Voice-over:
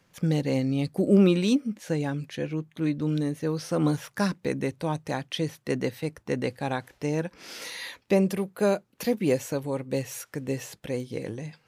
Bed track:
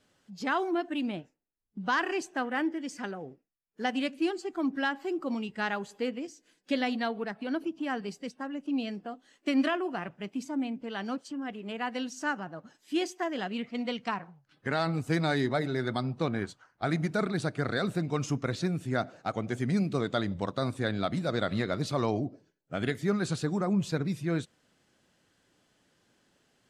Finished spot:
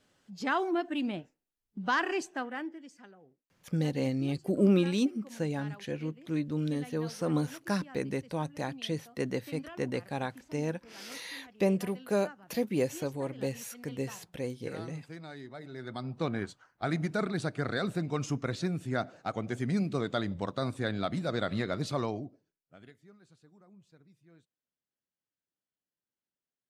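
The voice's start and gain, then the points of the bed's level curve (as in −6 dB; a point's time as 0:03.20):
3.50 s, −5.0 dB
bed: 0:02.22 −0.5 dB
0:03.08 −17.5 dB
0:15.51 −17.5 dB
0:16.24 −2 dB
0:21.96 −2 dB
0:23.15 −30.5 dB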